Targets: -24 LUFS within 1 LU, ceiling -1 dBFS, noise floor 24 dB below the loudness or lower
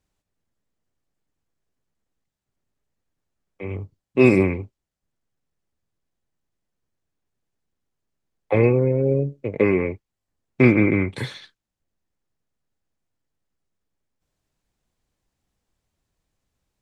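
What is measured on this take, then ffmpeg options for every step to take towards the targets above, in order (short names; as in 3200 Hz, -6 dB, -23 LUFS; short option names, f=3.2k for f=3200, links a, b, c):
loudness -19.5 LUFS; peak -2.5 dBFS; loudness target -24.0 LUFS
-> -af "volume=-4.5dB"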